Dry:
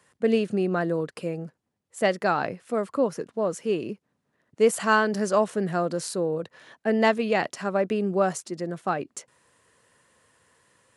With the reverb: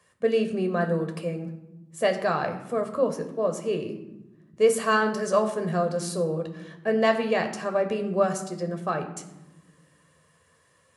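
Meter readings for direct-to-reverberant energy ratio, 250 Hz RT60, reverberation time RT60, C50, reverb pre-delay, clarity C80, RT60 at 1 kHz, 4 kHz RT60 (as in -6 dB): 5.0 dB, 2.0 s, 1.0 s, 10.5 dB, 12 ms, 12.5 dB, 0.90 s, 0.60 s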